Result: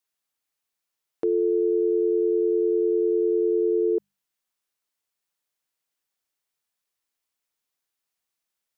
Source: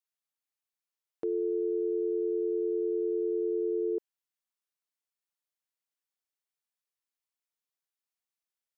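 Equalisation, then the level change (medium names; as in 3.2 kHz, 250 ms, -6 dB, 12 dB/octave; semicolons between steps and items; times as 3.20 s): hum notches 50/100/150/200 Hz; +8.0 dB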